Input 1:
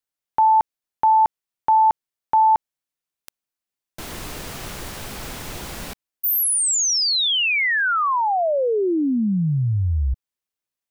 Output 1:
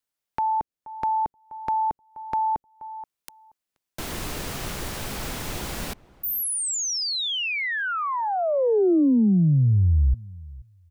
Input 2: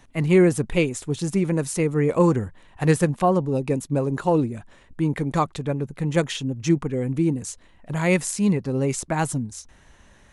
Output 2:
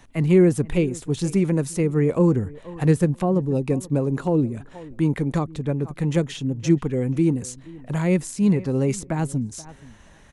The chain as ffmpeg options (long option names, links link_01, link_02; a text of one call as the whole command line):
ffmpeg -i in.wav -filter_complex "[0:a]asplit=2[link_01][link_02];[link_02]adelay=478,lowpass=frequency=1100:poles=1,volume=-21dB,asplit=2[link_03][link_04];[link_04]adelay=478,lowpass=frequency=1100:poles=1,volume=0.17[link_05];[link_01][link_03][link_05]amix=inputs=3:normalize=0,acrossover=split=470[link_06][link_07];[link_07]acompressor=threshold=-29dB:ratio=4:attack=1.2:release=707:knee=2.83:detection=peak[link_08];[link_06][link_08]amix=inputs=2:normalize=0,volume=2dB" out.wav